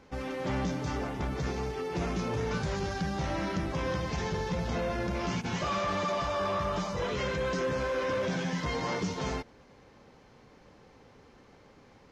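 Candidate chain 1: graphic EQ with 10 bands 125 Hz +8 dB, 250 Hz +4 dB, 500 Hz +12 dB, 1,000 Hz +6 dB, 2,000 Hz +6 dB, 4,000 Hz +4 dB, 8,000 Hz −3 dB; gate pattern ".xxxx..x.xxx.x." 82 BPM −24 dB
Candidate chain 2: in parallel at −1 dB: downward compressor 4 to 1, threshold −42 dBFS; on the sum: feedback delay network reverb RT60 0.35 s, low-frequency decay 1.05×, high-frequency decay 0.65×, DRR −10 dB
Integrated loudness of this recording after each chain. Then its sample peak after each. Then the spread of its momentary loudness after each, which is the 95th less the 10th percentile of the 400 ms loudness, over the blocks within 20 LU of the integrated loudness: −24.0, −20.0 LKFS; −10.0, −5.5 dBFS; 10, 21 LU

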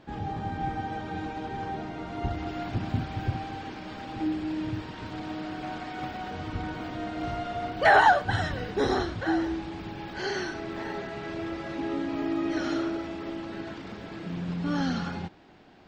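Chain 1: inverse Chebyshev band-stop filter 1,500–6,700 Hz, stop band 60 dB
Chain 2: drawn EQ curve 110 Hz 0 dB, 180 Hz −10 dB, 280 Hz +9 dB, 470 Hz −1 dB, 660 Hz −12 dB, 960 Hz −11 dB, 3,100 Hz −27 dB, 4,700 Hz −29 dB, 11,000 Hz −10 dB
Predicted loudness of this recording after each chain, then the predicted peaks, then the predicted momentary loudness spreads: −34.0, −29.5 LKFS; −17.0, −12.5 dBFS; 11, 13 LU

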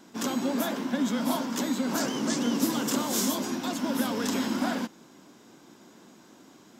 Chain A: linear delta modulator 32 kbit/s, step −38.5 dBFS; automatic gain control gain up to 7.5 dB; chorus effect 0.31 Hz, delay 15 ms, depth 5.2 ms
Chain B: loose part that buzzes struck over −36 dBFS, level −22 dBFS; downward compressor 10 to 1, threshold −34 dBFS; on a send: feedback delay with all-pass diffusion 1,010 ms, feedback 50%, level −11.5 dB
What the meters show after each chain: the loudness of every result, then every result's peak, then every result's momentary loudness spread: −24.5, −38.0 LKFS; −11.0, −22.0 dBFS; 17, 12 LU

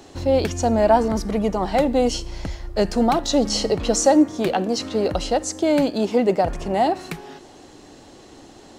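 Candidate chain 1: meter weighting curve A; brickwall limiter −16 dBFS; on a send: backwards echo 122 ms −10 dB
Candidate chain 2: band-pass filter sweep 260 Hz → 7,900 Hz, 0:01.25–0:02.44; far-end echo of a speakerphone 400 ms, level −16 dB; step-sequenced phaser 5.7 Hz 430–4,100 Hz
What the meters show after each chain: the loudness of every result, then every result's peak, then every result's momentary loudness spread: −26.0, −34.0 LKFS; −14.0, −15.5 dBFS; 7, 20 LU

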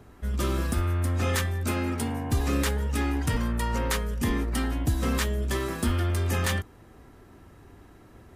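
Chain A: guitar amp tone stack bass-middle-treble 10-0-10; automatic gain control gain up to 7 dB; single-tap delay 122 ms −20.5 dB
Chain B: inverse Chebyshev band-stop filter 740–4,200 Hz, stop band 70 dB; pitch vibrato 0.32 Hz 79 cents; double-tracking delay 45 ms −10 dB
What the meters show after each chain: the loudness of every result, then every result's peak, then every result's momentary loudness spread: −28.5, −29.0 LKFS; −9.0, −15.5 dBFS; 5, 6 LU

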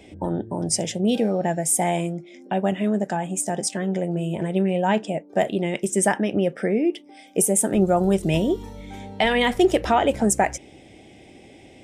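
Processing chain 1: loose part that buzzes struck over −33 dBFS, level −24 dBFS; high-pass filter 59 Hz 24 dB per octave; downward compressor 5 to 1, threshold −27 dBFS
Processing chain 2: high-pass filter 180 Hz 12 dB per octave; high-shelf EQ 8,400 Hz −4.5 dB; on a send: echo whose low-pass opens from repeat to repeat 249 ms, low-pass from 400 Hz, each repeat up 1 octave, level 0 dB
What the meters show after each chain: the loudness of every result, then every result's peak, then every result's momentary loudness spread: −31.0, −21.0 LKFS; −10.5, −3.0 dBFS; 9, 6 LU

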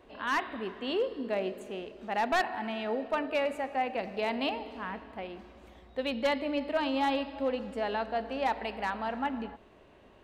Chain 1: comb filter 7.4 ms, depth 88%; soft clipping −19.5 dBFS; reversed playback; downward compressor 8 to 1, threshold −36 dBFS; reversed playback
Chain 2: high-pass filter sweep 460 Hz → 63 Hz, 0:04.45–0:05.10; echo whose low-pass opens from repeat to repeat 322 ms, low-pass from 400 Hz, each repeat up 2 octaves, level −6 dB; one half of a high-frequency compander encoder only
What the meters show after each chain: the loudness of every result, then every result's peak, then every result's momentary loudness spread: −40.0, −29.5 LKFS; −28.0, −13.0 dBFS; 5, 10 LU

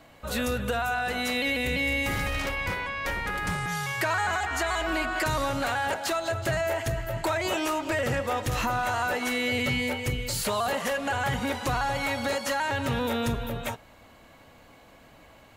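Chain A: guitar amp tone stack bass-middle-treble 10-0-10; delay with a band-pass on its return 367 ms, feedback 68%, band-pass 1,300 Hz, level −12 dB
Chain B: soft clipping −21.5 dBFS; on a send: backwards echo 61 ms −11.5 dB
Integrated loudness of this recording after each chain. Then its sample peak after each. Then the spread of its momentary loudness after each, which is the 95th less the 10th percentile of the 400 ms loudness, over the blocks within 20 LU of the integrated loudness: −34.0, −29.0 LKFS; −20.0, −21.0 dBFS; 7, 3 LU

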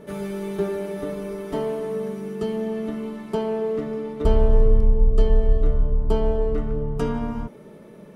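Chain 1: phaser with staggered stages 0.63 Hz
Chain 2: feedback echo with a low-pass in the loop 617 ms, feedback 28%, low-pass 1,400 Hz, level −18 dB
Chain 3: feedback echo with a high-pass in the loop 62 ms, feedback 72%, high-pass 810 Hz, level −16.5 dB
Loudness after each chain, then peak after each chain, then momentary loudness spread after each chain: −28.5, −25.0, −25.0 LKFS; −8.0, −5.5, −5.0 dBFS; 11, 10, 10 LU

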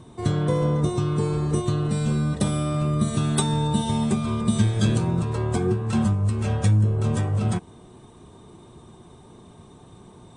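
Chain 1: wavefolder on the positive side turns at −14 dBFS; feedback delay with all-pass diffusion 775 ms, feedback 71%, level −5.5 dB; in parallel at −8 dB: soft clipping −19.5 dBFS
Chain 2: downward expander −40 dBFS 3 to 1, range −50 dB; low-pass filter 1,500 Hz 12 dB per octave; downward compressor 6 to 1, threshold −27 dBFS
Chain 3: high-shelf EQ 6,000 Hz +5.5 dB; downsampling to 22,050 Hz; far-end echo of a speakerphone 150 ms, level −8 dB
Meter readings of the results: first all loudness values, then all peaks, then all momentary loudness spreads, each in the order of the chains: −20.5, −31.0, −23.0 LKFS; −7.0, −17.5, −6.5 dBFS; 9, 1, 4 LU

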